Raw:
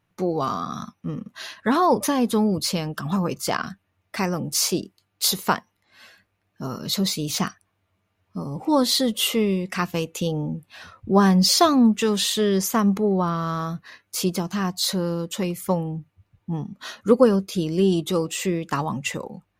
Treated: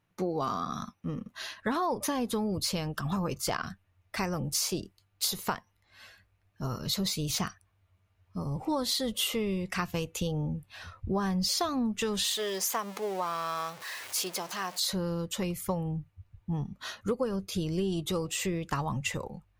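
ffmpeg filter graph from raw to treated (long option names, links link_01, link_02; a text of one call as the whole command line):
ffmpeg -i in.wav -filter_complex "[0:a]asettb=1/sr,asplit=3[link_01][link_02][link_03];[link_01]atrim=end=12.244[link_04];[link_02]atrim=start=12.24:end=14.8,asetpts=PTS-STARTPTS,afade=type=in:duration=0.004:curve=qsin,afade=type=out:start_time=2.556:duration=0.004:curve=qsin,aeval=exprs='val(0)+0.5*0.0266*sgn(val(0))':channel_layout=same,highpass=530,equalizer=frequency=1400:width=3.9:gain=-3.5[link_05];[link_03]atrim=start=14.796[link_06];[link_04][link_05]acrossfade=duration=0.004:curve1=hsin:curve2=qsin[link_07];[link_07][link_06]acrossfade=duration=0.004:curve1=qsin:curve2=hsin,asubboost=boost=7:cutoff=83,acompressor=threshold=-23dB:ratio=6,volume=-3.5dB" out.wav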